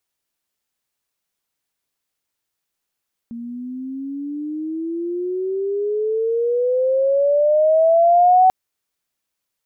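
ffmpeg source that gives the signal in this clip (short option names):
-f lavfi -i "aevalsrc='pow(10,(-8.5+19.5*(t/5.19-1))/20)*sin(2*PI*231*5.19/(20.5*log(2)/12)*(exp(20.5*log(2)/12*t/5.19)-1))':d=5.19:s=44100"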